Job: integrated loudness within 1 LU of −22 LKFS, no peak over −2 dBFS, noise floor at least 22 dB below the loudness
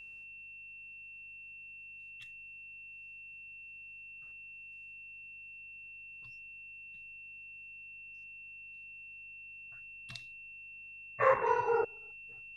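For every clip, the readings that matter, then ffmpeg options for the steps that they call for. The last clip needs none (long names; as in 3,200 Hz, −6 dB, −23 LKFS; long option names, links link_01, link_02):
mains hum 50 Hz; hum harmonics up to 200 Hz; level of the hum −72 dBFS; interfering tone 2,700 Hz; level of the tone −47 dBFS; integrated loudness −40.0 LKFS; sample peak −14.5 dBFS; target loudness −22.0 LKFS
→ -af "bandreject=frequency=50:width_type=h:width=4,bandreject=frequency=100:width_type=h:width=4,bandreject=frequency=150:width_type=h:width=4,bandreject=frequency=200:width_type=h:width=4"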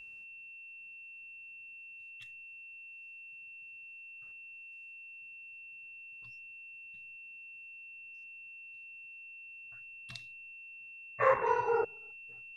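mains hum none found; interfering tone 2,700 Hz; level of the tone −47 dBFS
→ -af "bandreject=frequency=2700:width=30"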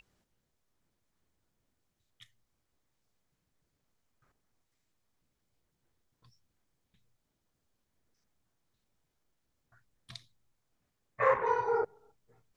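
interfering tone none found; integrated loudness −30.5 LKFS; sample peak −14.5 dBFS; target loudness −22.0 LKFS
→ -af "volume=8.5dB"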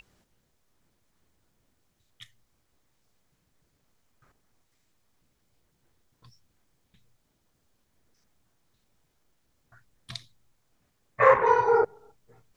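integrated loudness −22.0 LKFS; sample peak −6.0 dBFS; background noise floor −73 dBFS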